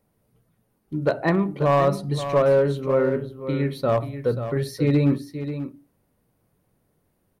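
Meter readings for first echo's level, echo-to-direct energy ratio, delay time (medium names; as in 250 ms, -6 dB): -10.5 dB, -10.5 dB, 535 ms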